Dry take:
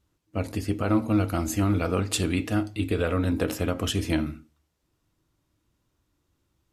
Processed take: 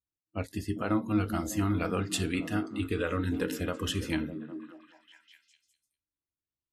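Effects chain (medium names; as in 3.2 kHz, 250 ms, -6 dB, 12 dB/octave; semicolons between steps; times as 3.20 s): spectral noise reduction 23 dB; dynamic bell 1.8 kHz, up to +4 dB, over -41 dBFS, Q 0.97; repeats whose band climbs or falls 201 ms, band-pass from 200 Hz, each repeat 0.7 oct, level -6 dB; trim -5.5 dB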